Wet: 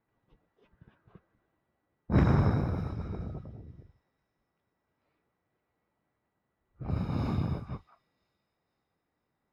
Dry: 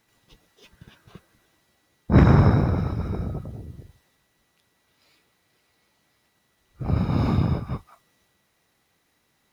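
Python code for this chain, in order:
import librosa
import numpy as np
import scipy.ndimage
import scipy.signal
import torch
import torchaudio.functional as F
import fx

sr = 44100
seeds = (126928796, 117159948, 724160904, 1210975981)

y = fx.env_lowpass(x, sr, base_hz=1300.0, full_db=-19.0)
y = fx.echo_wet_highpass(y, sr, ms=501, feedback_pct=50, hz=3200.0, wet_db=-24.0)
y = y * librosa.db_to_amplitude(-9.0)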